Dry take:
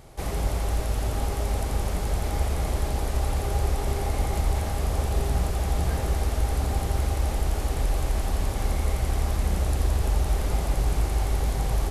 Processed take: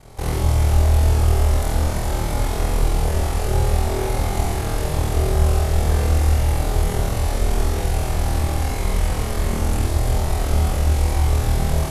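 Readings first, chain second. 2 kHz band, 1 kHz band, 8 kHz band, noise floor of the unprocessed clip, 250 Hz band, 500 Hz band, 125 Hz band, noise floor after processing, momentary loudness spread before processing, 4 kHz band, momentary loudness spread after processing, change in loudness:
+6.0 dB, +5.5 dB, +6.0 dB, -30 dBFS, +6.5 dB, +6.5 dB, +7.5 dB, -24 dBFS, 2 LU, +6.0 dB, 5 LU, +6.0 dB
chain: ring modulator 22 Hz; flutter echo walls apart 4.5 m, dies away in 0.84 s; trim +4.5 dB

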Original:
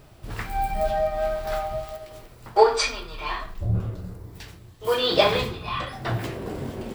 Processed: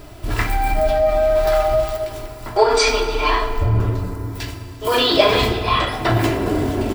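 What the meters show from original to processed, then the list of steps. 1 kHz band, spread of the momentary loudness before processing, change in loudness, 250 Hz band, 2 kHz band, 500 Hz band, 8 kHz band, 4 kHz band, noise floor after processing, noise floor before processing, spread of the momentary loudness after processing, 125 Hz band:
+6.0 dB, 20 LU, +7.0 dB, +11.0 dB, +8.0 dB, +7.0 dB, +7.5 dB, +7.0 dB, -36 dBFS, -49 dBFS, 13 LU, +8.5 dB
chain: comb 3 ms, depth 50%; in parallel at +1 dB: compressor with a negative ratio -26 dBFS, ratio -0.5; on the sum: FDN reverb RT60 3.4 s, high-frequency decay 0.45×, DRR 8 dB; trim +2 dB

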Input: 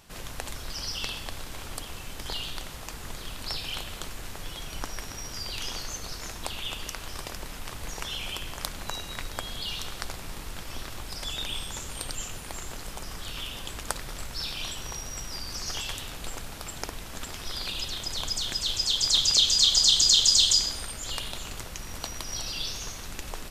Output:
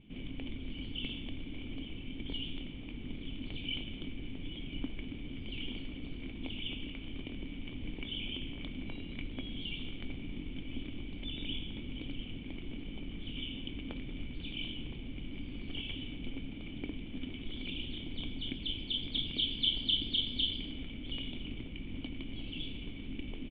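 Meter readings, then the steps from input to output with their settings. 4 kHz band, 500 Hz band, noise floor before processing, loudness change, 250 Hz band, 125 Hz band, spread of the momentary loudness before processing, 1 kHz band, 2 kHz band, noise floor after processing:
-10.5 dB, -7.5 dB, -41 dBFS, -12.0 dB, +5.5 dB, -2.0 dB, 20 LU, -20.5 dB, -7.5 dB, -44 dBFS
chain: vibrato 1 Hz 35 cents; cascade formant filter i; doubling 23 ms -14 dB; trim +9.5 dB

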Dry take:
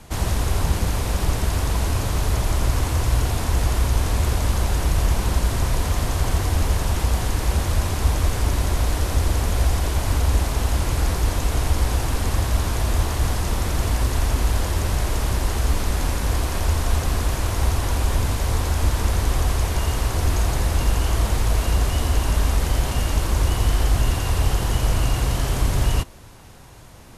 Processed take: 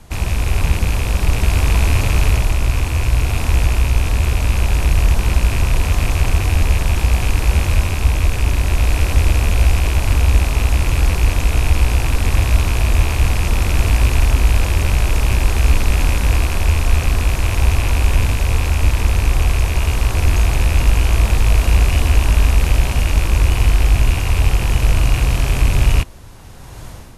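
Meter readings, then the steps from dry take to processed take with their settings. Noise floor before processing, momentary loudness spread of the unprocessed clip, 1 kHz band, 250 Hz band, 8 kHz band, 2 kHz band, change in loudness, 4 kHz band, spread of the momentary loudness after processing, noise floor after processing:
-27 dBFS, 2 LU, +2.0 dB, +2.5 dB, +1.5 dB, +7.5 dB, +5.5 dB, +3.5 dB, 3 LU, -23 dBFS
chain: rattle on loud lows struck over -26 dBFS, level -16 dBFS; bass shelf 100 Hz +6.5 dB; level rider; trim -1 dB

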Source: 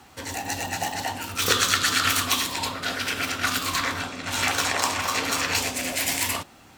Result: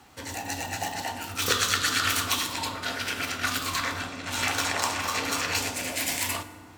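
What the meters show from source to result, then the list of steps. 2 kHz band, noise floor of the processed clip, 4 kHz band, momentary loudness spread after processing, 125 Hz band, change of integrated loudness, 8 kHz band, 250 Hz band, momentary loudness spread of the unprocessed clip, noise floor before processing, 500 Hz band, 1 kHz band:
-3.0 dB, -46 dBFS, -3.5 dB, 9 LU, -2.0 dB, -3.0 dB, -3.5 dB, -3.0 dB, 9 LU, -51 dBFS, -3.0 dB, -3.0 dB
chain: FDN reverb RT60 1.9 s, low-frequency decay 1.6×, high-frequency decay 0.45×, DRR 10.5 dB; trim -3.5 dB

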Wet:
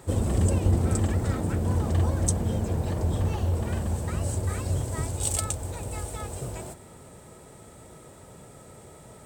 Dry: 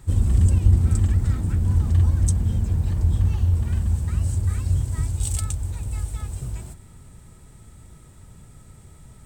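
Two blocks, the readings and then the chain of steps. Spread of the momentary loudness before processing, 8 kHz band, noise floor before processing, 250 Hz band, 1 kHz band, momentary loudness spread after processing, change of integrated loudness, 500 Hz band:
12 LU, +2.5 dB, -48 dBFS, +1.5 dB, +7.5 dB, 11 LU, -5.0 dB, +10.5 dB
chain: high-pass 240 Hz 6 dB/octave; peaking EQ 550 Hz +11.5 dB 1.4 oct; trim +2.5 dB

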